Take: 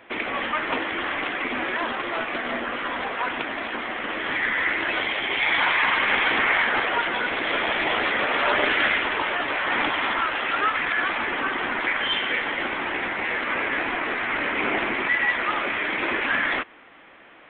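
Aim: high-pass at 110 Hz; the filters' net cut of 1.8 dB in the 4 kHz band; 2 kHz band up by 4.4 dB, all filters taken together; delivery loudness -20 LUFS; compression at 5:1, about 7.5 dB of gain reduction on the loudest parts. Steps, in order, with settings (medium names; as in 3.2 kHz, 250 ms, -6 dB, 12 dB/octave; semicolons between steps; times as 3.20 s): high-pass 110 Hz; peaking EQ 2 kHz +6.5 dB; peaking EQ 4 kHz -6.5 dB; compression 5:1, threshold -22 dBFS; trim +4 dB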